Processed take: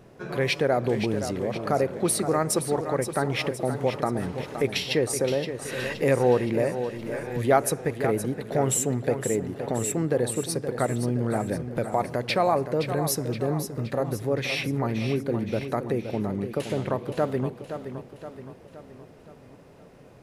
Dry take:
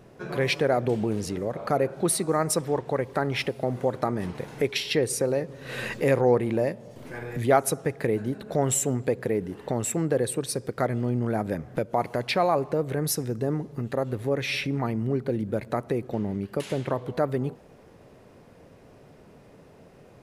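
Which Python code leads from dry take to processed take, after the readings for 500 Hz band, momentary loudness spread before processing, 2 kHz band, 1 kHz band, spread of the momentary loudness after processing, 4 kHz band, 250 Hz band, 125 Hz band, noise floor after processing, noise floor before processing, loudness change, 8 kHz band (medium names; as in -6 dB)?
+0.5 dB, 7 LU, +0.5 dB, +0.5 dB, 8 LU, +0.5 dB, +0.5 dB, +0.5 dB, -50 dBFS, -52 dBFS, +0.5 dB, +0.5 dB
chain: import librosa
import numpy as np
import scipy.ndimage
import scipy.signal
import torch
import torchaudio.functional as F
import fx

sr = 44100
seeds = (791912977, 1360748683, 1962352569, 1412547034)

y = fx.echo_feedback(x, sr, ms=520, feedback_pct=52, wet_db=-9.5)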